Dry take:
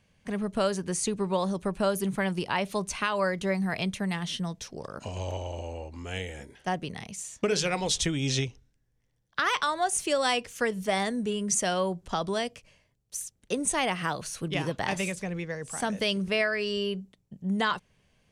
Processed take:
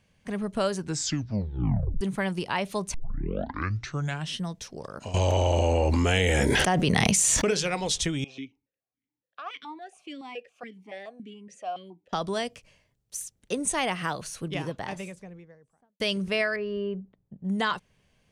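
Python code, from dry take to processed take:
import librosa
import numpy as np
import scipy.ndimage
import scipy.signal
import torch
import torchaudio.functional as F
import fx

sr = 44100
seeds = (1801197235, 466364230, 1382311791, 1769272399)

y = fx.env_flatten(x, sr, amount_pct=100, at=(5.14, 7.51))
y = fx.vowel_held(y, sr, hz=7.1, at=(8.24, 12.13))
y = fx.studio_fade_out(y, sr, start_s=14.08, length_s=1.92)
y = fx.lowpass(y, sr, hz=1300.0, slope=12, at=(16.56, 17.45))
y = fx.edit(y, sr, fx.tape_stop(start_s=0.77, length_s=1.24),
    fx.tape_start(start_s=2.94, length_s=1.43), tone=tone)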